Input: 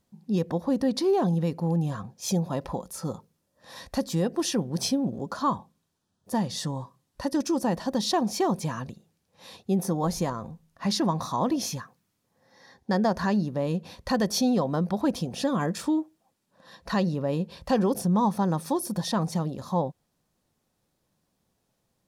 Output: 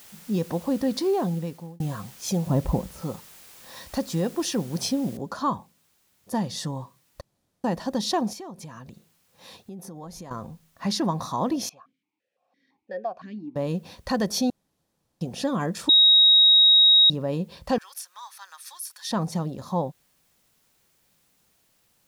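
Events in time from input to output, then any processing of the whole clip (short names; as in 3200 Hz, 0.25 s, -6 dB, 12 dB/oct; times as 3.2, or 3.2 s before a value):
0.9–1.8 fade out equal-power
2.47–3.02 tilt -4 dB/oct
5.17 noise floor step -49 dB -67 dB
7.21–7.64 room tone
8.33–10.31 compressor 4:1, threshold -39 dBFS
11.69–13.56 vowel sequencer 5.9 Hz
14.5–15.21 room tone
15.89–17.1 bleep 3790 Hz -12 dBFS
17.78–19.11 HPF 1500 Hz 24 dB/oct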